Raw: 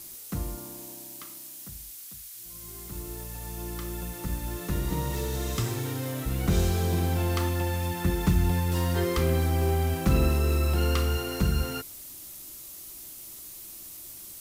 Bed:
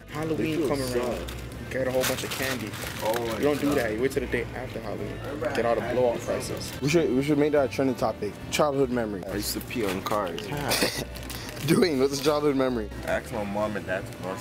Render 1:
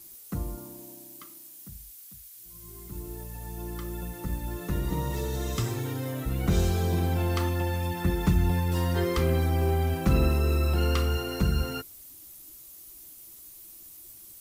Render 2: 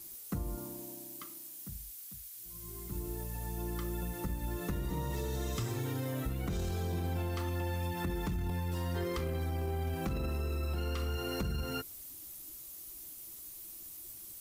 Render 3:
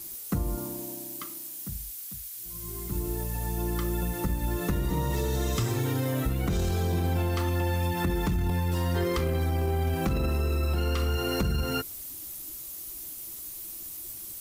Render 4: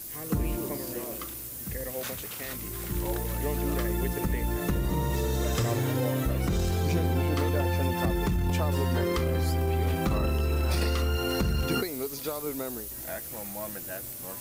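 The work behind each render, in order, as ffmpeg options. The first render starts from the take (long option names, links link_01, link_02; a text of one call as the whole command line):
ffmpeg -i in.wav -af "afftdn=noise_reduction=8:noise_floor=-44" out.wav
ffmpeg -i in.wav -af "alimiter=limit=-20.5dB:level=0:latency=1:release=12,acompressor=threshold=-32dB:ratio=6" out.wav
ffmpeg -i in.wav -af "volume=8dB" out.wav
ffmpeg -i in.wav -i bed.wav -filter_complex "[1:a]volume=-11dB[link_01];[0:a][link_01]amix=inputs=2:normalize=0" out.wav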